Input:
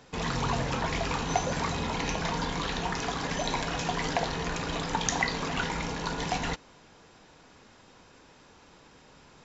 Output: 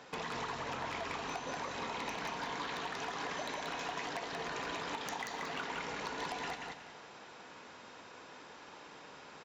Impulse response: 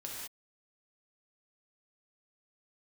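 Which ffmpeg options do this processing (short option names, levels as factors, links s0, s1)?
-filter_complex "[0:a]highpass=f=610:p=1,highshelf=f=4100:g=-10.5,acompressor=threshold=0.00708:ratio=16,aeval=exprs='0.0158*(abs(mod(val(0)/0.0158+3,4)-2)-1)':c=same,aecho=1:1:183|366|549|732:0.708|0.191|0.0516|0.0139,asplit=2[s0][s1];[1:a]atrim=start_sample=2205,adelay=115[s2];[s1][s2]afir=irnorm=-1:irlink=0,volume=0.178[s3];[s0][s3]amix=inputs=2:normalize=0,volume=1.88"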